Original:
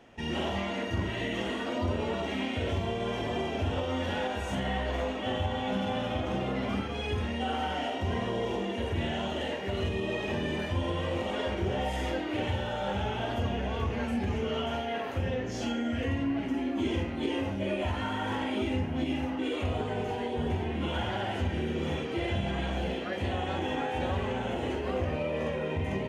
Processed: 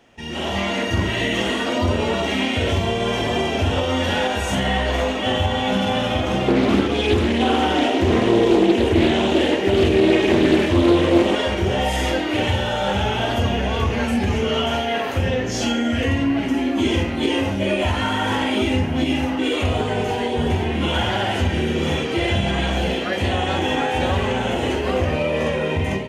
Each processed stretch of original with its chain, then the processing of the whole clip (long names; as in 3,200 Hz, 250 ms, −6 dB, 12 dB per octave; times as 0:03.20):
0:06.48–0:11.35: parametric band 330 Hz +14.5 dB 0.63 octaves + highs frequency-modulated by the lows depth 0.36 ms
whole clip: automatic gain control gain up to 10 dB; high-shelf EQ 2,700 Hz +7 dB